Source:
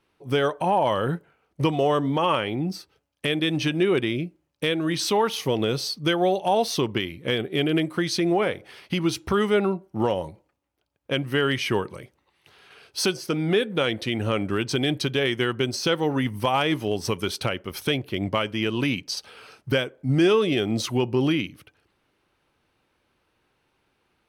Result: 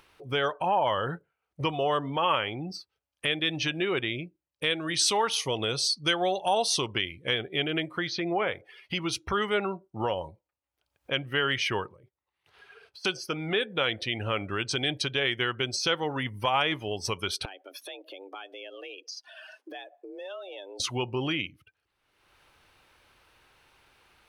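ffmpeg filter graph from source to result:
ffmpeg -i in.wav -filter_complex "[0:a]asettb=1/sr,asplit=3[link_01][link_02][link_03];[link_01]atrim=end=4.704[link_04];[link_02]atrim=start=4.7:end=7.33,asetpts=PTS-STARTPTS,afade=type=in:duration=0.004:curve=qsin,afade=type=out:start_time=2.626:duration=0.004:curve=qsin,lowpass=frequency=10000:width=0.5412,lowpass=frequency=10000:width=1.3066,highshelf=frequency=7300:gain=11[link_05];[link_03]atrim=start=7.326[link_06];[link_04][link_05]acrossfade=duration=0.004:curve1=hsin:curve2=qsin[link_07];[link_07][link_06]acrossfade=duration=0.004:curve1=qsin:curve2=hsin,asettb=1/sr,asplit=3[link_08][link_09][link_10];[link_08]atrim=end=8.074[link_11];[link_09]atrim=start=8.07:end=8.48,asetpts=PTS-STARTPTS,afade=type=in:duration=0.004:curve=qsin,afade=type=out:start_time=0.406:duration=0.004:curve=qsin,acrossover=split=6400[link_12][link_13];[link_13]acompressor=threshold=-45dB:ratio=4:attack=1:release=60[link_14];[link_12][link_14]amix=inputs=2:normalize=0,aemphasis=mode=reproduction:type=50fm[link_15];[link_10]atrim=start=8.476[link_16];[link_11][link_15]acrossfade=duration=0.004:curve1=hsin:curve2=qsin[link_17];[link_17][link_16]acrossfade=duration=0.004:curve1=qsin:curve2=hsin,asettb=1/sr,asplit=3[link_18][link_19][link_20];[link_18]atrim=end=11.884[link_21];[link_19]atrim=start=11.88:end=13.05,asetpts=PTS-STARTPTS,afade=type=in:duration=0.004:curve=qsin,afade=type=out:start_time=1.166:duration=0.004:curve=qsin,acompressor=threshold=-42dB:ratio=6:attack=3.2:release=140:knee=1:detection=peak,agate=range=-7dB:threshold=-56dB:ratio=16:release=100:detection=peak,highshelf=frequency=2500:gain=-9[link_22];[link_20]atrim=start=13.046[link_23];[link_21][link_22]acrossfade=duration=0.004:curve1=hsin:curve2=qsin[link_24];[link_24][link_23]acrossfade=duration=0.004:curve1=qsin:curve2=hsin,asettb=1/sr,asplit=3[link_25][link_26][link_27];[link_25]atrim=end=17.454[link_28];[link_26]atrim=start=17.45:end=20.8,asetpts=PTS-STARTPTS,afade=type=in:duration=0.004:curve=qsin,afade=type=out:start_time=3.346:duration=0.004:curve=qsin,acompressor=threshold=-39dB:ratio=3:attack=3.2:release=140:knee=1:detection=peak,afreqshift=190[link_29];[link_27]atrim=start=20.796[link_30];[link_28][link_29]acrossfade=duration=0.004:curve1=hsin:curve2=qsin[link_31];[link_31][link_30]acrossfade=duration=0.004:curve1=qsin:curve2=hsin,afftdn=noise_reduction=18:noise_floor=-43,equalizer=frequency=230:width_type=o:width=2.4:gain=-11,acompressor=mode=upward:threshold=-39dB:ratio=2.5" out.wav

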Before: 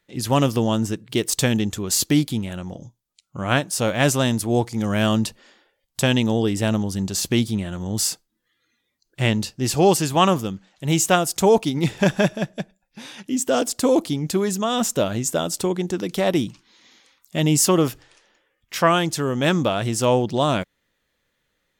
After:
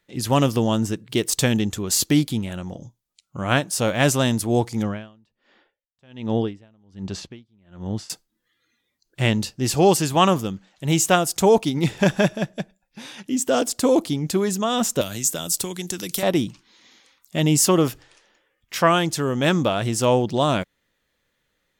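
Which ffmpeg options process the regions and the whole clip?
ffmpeg -i in.wav -filter_complex "[0:a]asettb=1/sr,asplit=3[link_01][link_02][link_03];[link_01]atrim=end=4.834[link_04];[link_02]atrim=start=4.83:end=8.1,asetpts=PTS-STARTPTS,afade=type=in:duration=0.004:curve=qsin,afade=type=out:start_time=3.266:duration=0.004:curve=qsin,lowpass=3400,aeval=exprs='val(0)*pow(10,-37*(0.5-0.5*cos(2*PI*1.3*n/s))/20)':channel_layout=same[link_05];[link_03]atrim=start=8.096[link_06];[link_04][link_05]acrossfade=duration=0.004:curve1=hsin:curve2=qsin[link_07];[link_07][link_06]acrossfade=duration=0.004:curve1=qsin:curve2=hsin,asettb=1/sr,asplit=3[link_08][link_09][link_10];[link_08]atrim=end=15.014[link_11];[link_09]atrim=start=15.01:end=16.23,asetpts=PTS-STARTPTS,afade=type=in:duration=0.004:curve=qsin,afade=type=out:start_time=1.216:duration=0.004:curve=qsin,acrossover=split=170|1400|6200[link_12][link_13][link_14][link_15];[link_12]acompressor=threshold=-37dB:ratio=3[link_16];[link_13]acompressor=threshold=-34dB:ratio=3[link_17];[link_14]acompressor=threshold=-37dB:ratio=3[link_18];[link_15]acompressor=threshold=-38dB:ratio=3[link_19];[link_16][link_17][link_18][link_19]amix=inputs=4:normalize=0,aemphasis=mode=production:type=75kf[link_20];[link_10]atrim=start=16.226[link_21];[link_11][link_20]acrossfade=duration=0.004:curve1=hsin:curve2=qsin[link_22];[link_22][link_21]acrossfade=duration=0.004:curve1=qsin:curve2=hsin" out.wav

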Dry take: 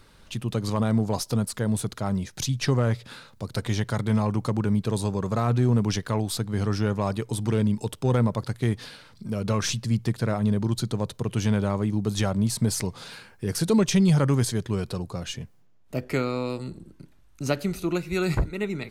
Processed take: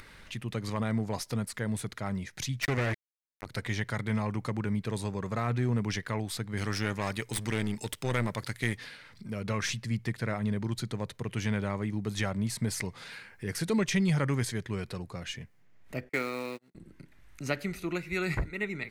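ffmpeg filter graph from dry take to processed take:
ffmpeg -i in.wav -filter_complex "[0:a]asettb=1/sr,asplit=3[link_01][link_02][link_03];[link_01]atrim=end=2.624[link_04];[link_02]atrim=start=2.62:end=3.46,asetpts=PTS-STARTPTS,afade=type=in:duration=0.004:curve=qsin,afade=type=out:start_time=0.836:duration=0.004:curve=qsin,equalizer=frequency=180:width_type=o:width=0.28:gain=-14,acrusher=bits=3:mix=0:aa=0.5[link_05];[link_03]atrim=start=3.456[link_06];[link_04][link_05]acrossfade=duration=0.004:curve1=hsin:curve2=qsin[link_07];[link_07][link_06]acrossfade=duration=0.004:curve1=qsin:curve2=hsin,asettb=1/sr,asplit=3[link_08][link_09][link_10];[link_08]atrim=end=6.574[link_11];[link_09]atrim=start=6.57:end=8.77,asetpts=PTS-STARTPTS,afade=type=in:duration=0.004:curve=qsin,afade=type=out:start_time=2.196:duration=0.004:curve=qsin,highshelf=frequency=2500:gain=11,aeval=exprs='clip(val(0),-1,0.0422)':channel_layout=same[link_12];[link_10]atrim=start=8.766[link_13];[link_11][link_12]acrossfade=duration=0.004:curve1=hsin:curve2=qsin[link_14];[link_14][link_13]acrossfade=duration=0.004:curve1=qsin:curve2=hsin,asettb=1/sr,asplit=3[link_15][link_16][link_17];[link_15]atrim=end=16.094[link_18];[link_16]atrim=start=16.09:end=16.75,asetpts=PTS-STARTPTS,afade=type=in:duration=0.004:curve=qsin,afade=type=out:start_time=0.656:duration=0.004:curve=qsin,agate=range=-41dB:threshold=-31dB:ratio=16:release=100:detection=peak,highpass=210,acrusher=bits=4:mode=log:mix=0:aa=0.000001[link_19];[link_17]atrim=start=16.746[link_20];[link_18][link_19]acrossfade=duration=0.004:curve1=hsin:curve2=qsin[link_21];[link_21][link_20]acrossfade=duration=0.004:curve1=qsin:curve2=hsin,equalizer=frequency=2000:width_type=o:width=0.73:gain=12,acompressor=mode=upward:threshold=-35dB:ratio=2.5,volume=-7.5dB" out.wav

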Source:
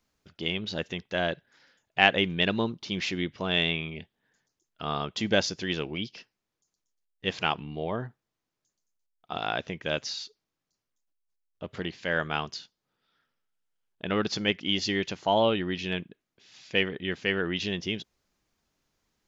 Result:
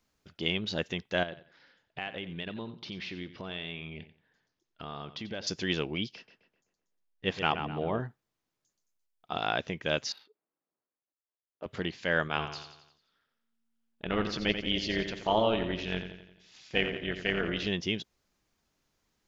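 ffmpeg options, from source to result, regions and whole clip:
ffmpeg -i in.wav -filter_complex "[0:a]asettb=1/sr,asplit=3[link_01][link_02][link_03];[link_01]atrim=end=1.234[link_04];[link_02]atrim=start=1.23:end=5.47,asetpts=PTS-STARTPTS,afade=type=in:duration=0.004:curve=qsin,afade=type=out:start_time=4.236:duration=0.004:curve=qsin,lowpass=frequency=4900:width=0.5412,lowpass=frequency=4900:width=1.3066,acompressor=threshold=-39dB:ratio=3:attack=3.2:release=140:knee=1:detection=peak,aecho=1:1:89|178|267:0.211|0.0507|0.0122,atrim=end_sample=186984[link_05];[link_03]atrim=start=5.466[link_06];[link_04][link_05]acrossfade=duration=0.004:curve1=hsin:curve2=qsin[link_07];[link_07][link_06]acrossfade=duration=0.004:curve1=qsin:curve2=hsin,asettb=1/sr,asplit=3[link_08][link_09][link_10];[link_08]atrim=end=6.154[link_11];[link_09]atrim=start=6.15:end=8,asetpts=PTS-STARTPTS,afade=type=in:duration=0.004:curve=qsin,afade=type=out:start_time=1.846:duration=0.004:curve=qsin,highshelf=frequency=5200:gain=-11.5,asplit=2[link_12][link_13];[link_13]adelay=128,lowpass=frequency=2500:poles=1,volume=-7.5dB,asplit=2[link_14][link_15];[link_15]adelay=128,lowpass=frequency=2500:poles=1,volume=0.49,asplit=2[link_16][link_17];[link_17]adelay=128,lowpass=frequency=2500:poles=1,volume=0.49,asplit=2[link_18][link_19];[link_19]adelay=128,lowpass=frequency=2500:poles=1,volume=0.49,asplit=2[link_20][link_21];[link_21]adelay=128,lowpass=frequency=2500:poles=1,volume=0.49,asplit=2[link_22][link_23];[link_23]adelay=128,lowpass=frequency=2500:poles=1,volume=0.49[link_24];[link_12][link_14][link_16][link_18][link_20][link_22][link_24]amix=inputs=7:normalize=0,atrim=end_sample=81585[link_25];[link_10]atrim=start=7.996[link_26];[link_11][link_25]acrossfade=duration=0.004:curve1=hsin:curve2=qsin[link_27];[link_27][link_26]acrossfade=duration=0.004:curve1=qsin:curve2=hsin,asettb=1/sr,asplit=3[link_28][link_29][link_30];[link_28]atrim=end=10.124[link_31];[link_29]atrim=start=10.12:end=11.66,asetpts=PTS-STARTPTS,afade=type=in:duration=0.004:curve=qsin,afade=type=out:start_time=1.536:duration=0.004:curve=qsin,highpass=320,lowpass=3300,adynamicsmooth=sensitivity=4.5:basefreq=1400[link_32];[link_30]atrim=start=11.656[link_33];[link_31][link_32]acrossfade=duration=0.004:curve1=hsin:curve2=qsin[link_34];[link_34][link_33]acrossfade=duration=0.004:curve1=qsin:curve2=hsin,asettb=1/sr,asplit=3[link_35][link_36][link_37];[link_35]atrim=end=12.284[link_38];[link_36]atrim=start=12.28:end=17.67,asetpts=PTS-STARTPTS,afade=type=in:duration=0.004:curve=qsin,afade=type=out:start_time=5.386:duration=0.004:curve=qsin,acrossover=split=5200[link_39][link_40];[link_40]acompressor=threshold=-50dB:ratio=4:attack=1:release=60[link_41];[link_39][link_41]amix=inputs=2:normalize=0,tremolo=f=230:d=0.667,aecho=1:1:87|174|261|348|435|522:0.355|0.181|0.0923|0.0471|0.024|0.0122,atrim=end_sample=237699[link_42];[link_37]atrim=start=17.666[link_43];[link_38][link_42]acrossfade=duration=0.004:curve1=hsin:curve2=qsin[link_44];[link_44][link_43]acrossfade=duration=0.004:curve1=qsin:curve2=hsin" out.wav

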